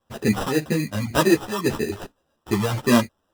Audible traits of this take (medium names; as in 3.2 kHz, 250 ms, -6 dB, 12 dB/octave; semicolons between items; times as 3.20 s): a quantiser's noise floor 12-bit, dither triangular; phasing stages 4, 1.8 Hz, lowest notch 310–4000 Hz; aliases and images of a low sample rate 2.2 kHz, jitter 0%; a shimmering, thickened sound